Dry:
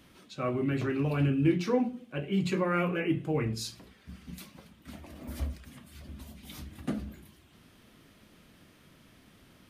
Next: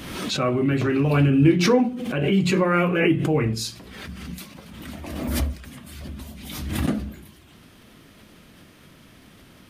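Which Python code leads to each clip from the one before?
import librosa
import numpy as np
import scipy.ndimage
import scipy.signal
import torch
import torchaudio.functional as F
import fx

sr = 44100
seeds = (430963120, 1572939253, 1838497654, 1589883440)

y = fx.pre_swell(x, sr, db_per_s=39.0)
y = y * 10.0 ** (8.0 / 20.0)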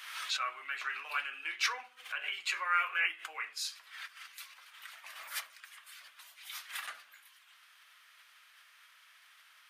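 y = scipy.signal.sosfilt(scipy.signal.butter(4, 1300.0, 'highpass', fs=sr, output='sos'), x)
y = fx.high_shelf(y, sr, hz=2200.0, db=-9.0)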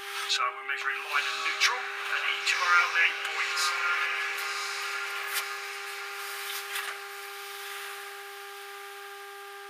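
y = fx.echo_diffused(x, sr, ms=1069, feedback_pct=54, wet_db=-4.0)
y = fx.dmg_buzz(y, sr, base_hz=400.0, harmonics=4, level_db=-52.0, tilt_db=-1, odd_only=False)
y = y * 10.0 ** (7.0 / 20.0)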